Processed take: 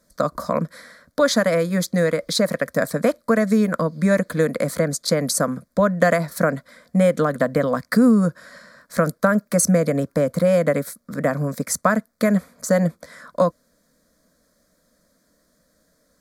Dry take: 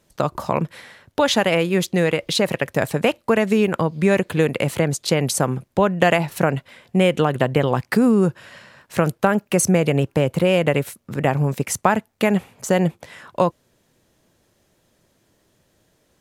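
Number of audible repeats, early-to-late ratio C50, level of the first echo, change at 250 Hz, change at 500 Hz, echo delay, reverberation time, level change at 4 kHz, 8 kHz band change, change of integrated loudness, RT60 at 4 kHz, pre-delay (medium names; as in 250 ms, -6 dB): no echo, no reverb, no echo, +0.5 dB, 0.0 dB, no echo, no reverb, -3.5 dB, +1.0 dB, -0.5 dB, no reverb, no reverb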